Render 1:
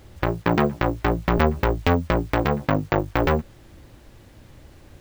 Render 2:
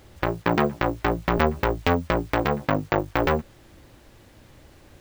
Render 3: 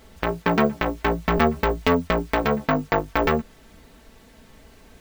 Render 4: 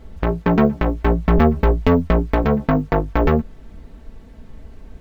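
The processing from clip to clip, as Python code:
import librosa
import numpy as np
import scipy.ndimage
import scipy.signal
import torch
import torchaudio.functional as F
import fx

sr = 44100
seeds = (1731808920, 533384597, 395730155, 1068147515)

y1 = fx.low_shelf(x, sr, hz=220.0, db=-5.5)
y2 = y1 + 0.75 * np.pad(y1, (int(4.5 * sr / 1000.0), 0))[:len(y1)]
y3 = fx.tilt_eq(y2, sr, slope=-3.0)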